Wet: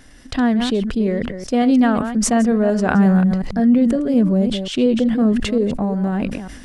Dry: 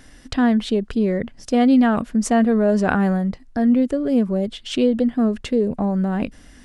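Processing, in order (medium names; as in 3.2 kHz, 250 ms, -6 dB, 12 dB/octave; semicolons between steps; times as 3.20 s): chunks repeated in reverse 180 ms, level -10.5 dB; 2.94–5.33 s: dynamic bell 170 Hz, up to +7 dB, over -34 dBFS, Q 2.1; decay stretcher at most 48 dB/s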